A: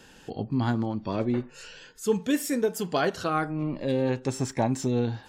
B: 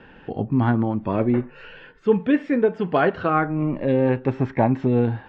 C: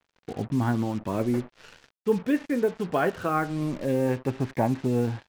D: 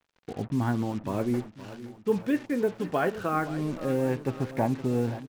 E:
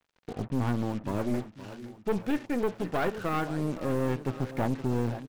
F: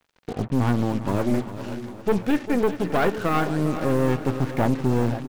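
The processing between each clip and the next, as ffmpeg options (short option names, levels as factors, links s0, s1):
-af "lowpass=f=2500:w=0.5412,lowpass=f=2500:w=1.3066,volume=2.11"
-af "acrusher=bits=5:mix=0:aa=0.5,volume=0.531"
-af "aecho=1:1:520|1040|1560|2080|2600:0.178|0.0978|0.0538|0.0296|0.0163,volume=0.794"
-af "aeval=exprs='(tanh(17.8*val(0)+0.65)-tanh(0.65))/17.8':c=same,volume=1.33"
-af "aecho=1:1:399|798|1197|1596|1995:0.224|0.114|0.0582|0.0297|0.0151,volume=2.24"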